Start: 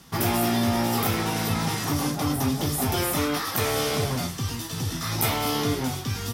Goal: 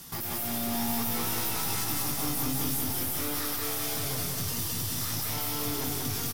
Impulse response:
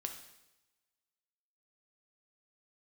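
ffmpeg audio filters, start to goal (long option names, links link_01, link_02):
-filter_complex "[0:a]aemphasis=mode=production:type=50fm,alimiter=limit=-18dB:level=0:latency=1:release=255,aeval=exprs='(tanh(35.5*val(0)+0.3)-tanh(0.3))/35.5':channel_layout=same,asettb=1/sr,asplit=3[link_01][link_02][link_03];[link_01]atrim=end=0.734[link_04];[link_02]atrim=start=0.73:end=2.81,asetpts=PTS-STARTPTS,afade=type=in:duration=0.004:curve=qsin,afade=type=out:start_time=2.076:duration=0.004:curve=qsin,asplit=2[link_05][link_06];[link_06]adelay=16,volume=-4dB[link_07];[link_05][link_07]amix=inputs=2:normalize=0,atrim=end_sample=91728[link_08];[link_03]atrim=start=2.806[link_09];[link_04][link_08]acrossfade=duration=0.004:curve1=hsin:curve2=qsin[link_10];[link_10][link_09]acrossfade=duration=0.004:curve1=qsin:curve2=hsin,aecho=1:1:184|368|552|736|920|1104|1288|1472:0.708|0.411|0.238|0.138|0.0801|0.0465|0.027|0.0156"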